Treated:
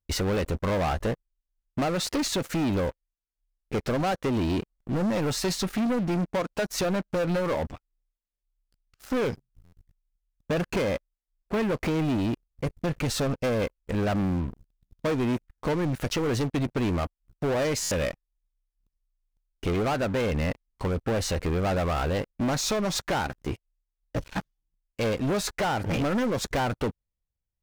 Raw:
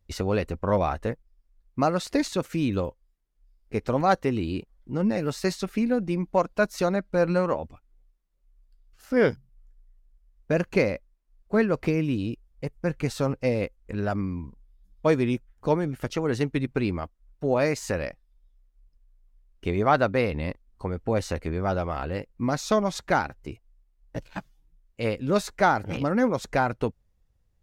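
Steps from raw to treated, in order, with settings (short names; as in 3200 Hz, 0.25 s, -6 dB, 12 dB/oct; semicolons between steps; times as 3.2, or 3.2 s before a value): compressor 12:1, threshold -23 dBFS, peak gain reduction 9.5 dB; sample leveller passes 5; stuck buffer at 9.64/17.82, samples 512, times 7; gain -9 dB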